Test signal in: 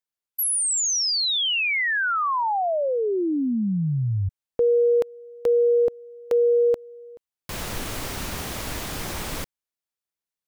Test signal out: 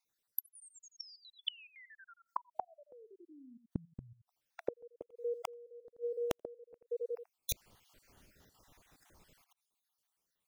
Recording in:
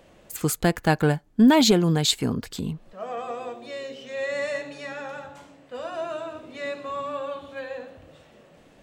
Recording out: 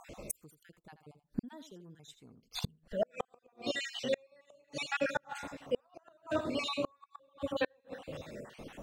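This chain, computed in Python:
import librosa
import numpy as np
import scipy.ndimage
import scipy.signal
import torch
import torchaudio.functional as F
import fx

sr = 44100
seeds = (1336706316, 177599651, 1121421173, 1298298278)

y = fx.spec_dropout(x, sr, seeds[0], share_pct=50)
y = y + 10.0 ** (-13.0 / 20.0) * np.pad(y, (int(83 * sr / 1000.0), 0))[:len(y)]
y = fx.gate_flip(y, sr, shuts_db=-28.0, range_db=-40)
y = F.gain(torch.from_numpy(y), 8.0).numpy()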